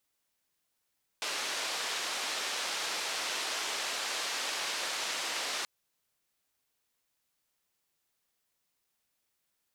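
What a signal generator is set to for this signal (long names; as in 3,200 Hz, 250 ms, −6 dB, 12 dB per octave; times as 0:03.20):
band-limited noise 450–5,400 Hz, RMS −35 dBFS 4.43 s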